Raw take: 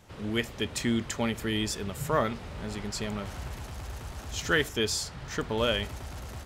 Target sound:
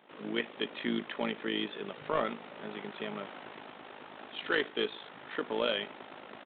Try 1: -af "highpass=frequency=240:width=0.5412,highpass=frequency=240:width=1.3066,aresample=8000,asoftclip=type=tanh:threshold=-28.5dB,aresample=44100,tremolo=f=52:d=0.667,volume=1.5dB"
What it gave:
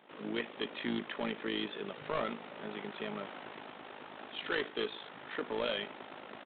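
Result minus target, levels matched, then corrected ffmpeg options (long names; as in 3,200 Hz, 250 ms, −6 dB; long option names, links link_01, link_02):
soft clipping: distortion +7 dB
-af "highpass=frequency=240:width=0.5412,highpass=frequency=240:width=1.3066,aresample=8000,asoftclip=type=tanh:threshold=-20.5dB,aresample=44100,tremolo=f=52:d=0.667,volume=1.5dB"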